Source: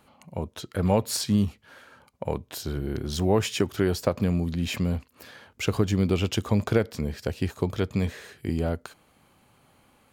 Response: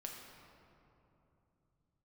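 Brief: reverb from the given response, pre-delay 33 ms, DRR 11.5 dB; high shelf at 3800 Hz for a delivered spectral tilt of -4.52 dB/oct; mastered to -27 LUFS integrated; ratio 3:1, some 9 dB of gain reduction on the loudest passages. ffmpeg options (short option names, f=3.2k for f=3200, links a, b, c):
-filter_complex "[0:a]highshelf=f=3.8k:g=8,acompressor=threshold=-29dB:ratio=3,asplit=2[a][b];[1:a]atrim=start_sample=2205,adelay=33[c];[b][c]afir=irnorm=-1:irlink=0,volume=-9dB[d];[a][d]amix=inputs=2:normalize=0,volume=5.5dB"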